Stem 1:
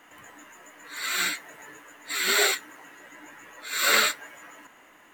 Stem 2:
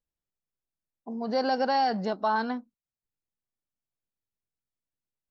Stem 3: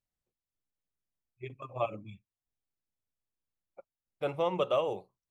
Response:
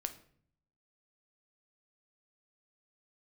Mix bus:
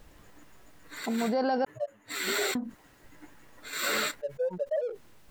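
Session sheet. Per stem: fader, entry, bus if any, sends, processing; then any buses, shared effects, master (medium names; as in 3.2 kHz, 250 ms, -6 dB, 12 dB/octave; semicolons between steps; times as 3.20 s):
-12.0 dB, 0.00 s, bus A, no send, bass shelf 490 Hz +11.5 dB; upward expansion 2.5:1, over -45 dBFS
-2.0 dB, 0.00 s, muted 1.65–2.55 s, no bus, no send, treble shelf 3.5 kHz -10.5 dB
-4.5 dB, 0.00 s, bus A, no send, spectral contrast expander 4:1
bus A: 0.0 dB, waveshaping leveller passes 1; peak limiter -27 dBFS, peak gain reduction 6.5 dB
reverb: none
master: level flattener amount 70%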